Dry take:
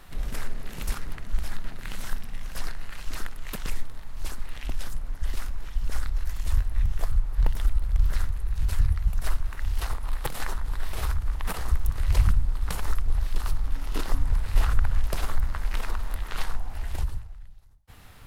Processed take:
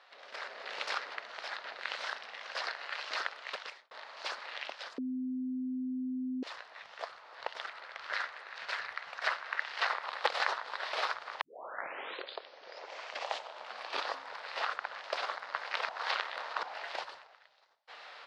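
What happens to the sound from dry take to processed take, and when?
0:03.23–0:03.91: fade out
0:04.98–0:06.43: beep over 256 Hz −7 dBFS
0:07.64–0:10.06: parametric band 1,800 Hz +6.5 dB 1.2 octaves
0:11.41: tape start 2.82 s
0:15.89–0:16.63: reverse
whole clip: automatic gain control gain up to 12 dB; Chebyshev band-pass filter 540–4,700 Hz, order 3; level −5 dB

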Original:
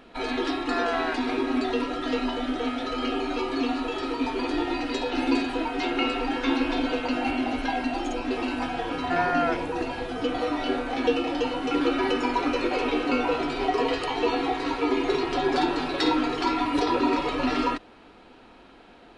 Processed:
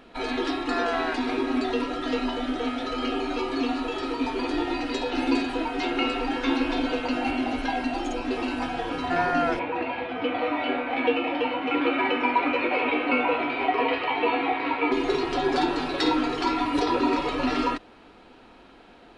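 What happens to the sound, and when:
0:09.59–0:14.92: loudspeaker in its box 120–3,400 Hz, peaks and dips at 150 Hz −7 dB, 390 Hz −5 dB, 600 Hz +4 dB, 940 Hz +4 dB, 2,300 Hz +9 dB

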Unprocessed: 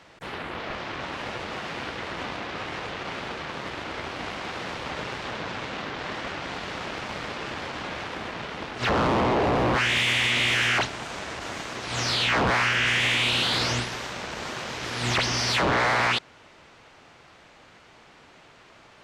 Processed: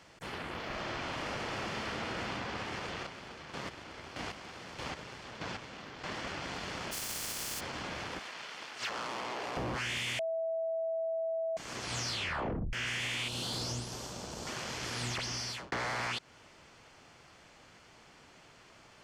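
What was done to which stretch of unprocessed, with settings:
0:00.67–0:02.29: thrown reverb, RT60 3 s, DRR −2 dB
0:02.91–0:06.17: square-wave tremolo 1.6 Hz, depth 60%, duty 25%
0:06.91–0:07.59: compressing power law on the bin magnitudes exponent 0.23
0:08.19–0:09.57: high-pass filter 1,400 Hz 6 dB per octave
0:10.19–0:11.57: beep over 654 Hz −15.5 dBFS
0:12.11: tape stop 0.62 s
0:13.28–0:14.47: parametric band 2,000 Hz −13 dB 1.4 octaves
0:15.04–0:15.72: fade out
whole clip: bass and treble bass +3 dB, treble +7 dB; notch filter 3,800 Hz, Q 13; downward compressor, threshold −27 dBFS; level −6.5 dB

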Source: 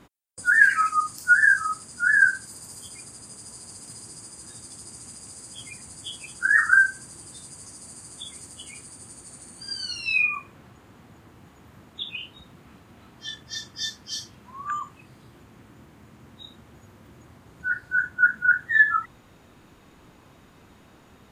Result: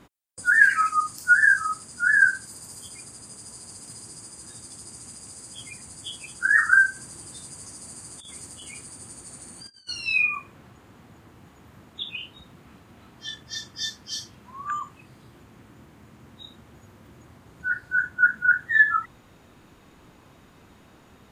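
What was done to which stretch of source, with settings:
0:06.96–0:09.89: compressor whose output falls as the input rises −41 dBFS, ratio −0.5

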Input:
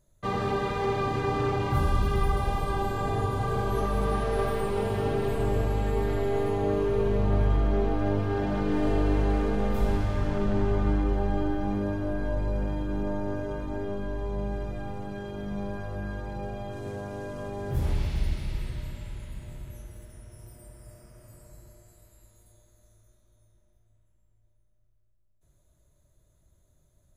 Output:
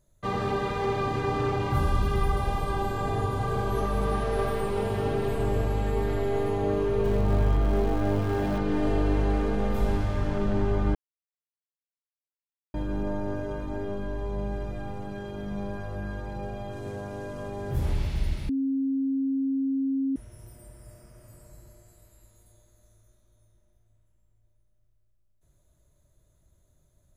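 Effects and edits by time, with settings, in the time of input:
0:07.04–0:08.58: converter with a step at zero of −38 dBFS
0:10.95–0:12.74: silence
0:18.49–0:20.16: beep over 270 Hz −23.5 dBFS

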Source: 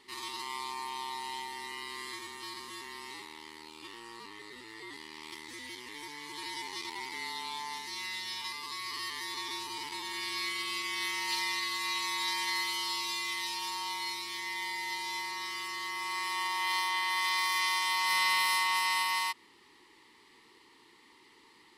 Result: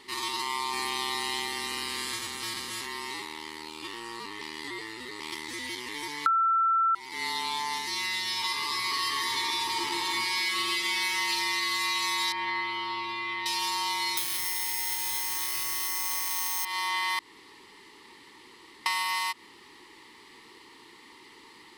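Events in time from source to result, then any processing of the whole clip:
0:00.72–0:02.85: ceiling on every frequency bin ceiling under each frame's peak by 13 dB
0:04.41–0:05.20: reverse
0:06.26–0:06.95: beep over 1,340 Hz −12.5 dBFS
0:08.32–0:11.12: thrown reverb, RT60 2.5 s, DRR 0.5 dB
0:12.32–0:13.46: high-frequency loss of the air 440 metres
0:14.17–0:16.65: bad sample-rate conversion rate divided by 6×, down none, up zero stuff
0:17.19–0:18.86: fill with room tone
whole clip: downward compressor, threshold −33 dBFS; level +8 dB

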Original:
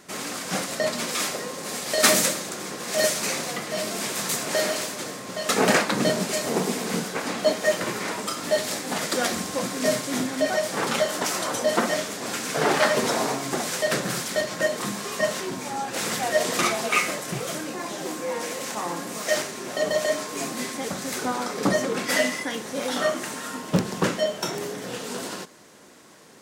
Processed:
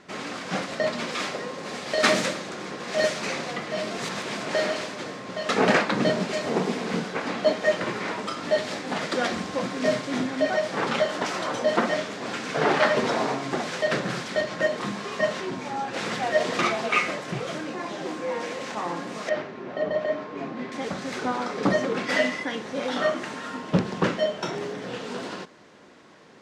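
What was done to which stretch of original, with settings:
0:03.98–0:04.40: reverse
0:19.29–0:20.72: head-to-tape spacing loss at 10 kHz 29 dB
whole clip: low-pass filter 3,800 Hz 12 dB per octave

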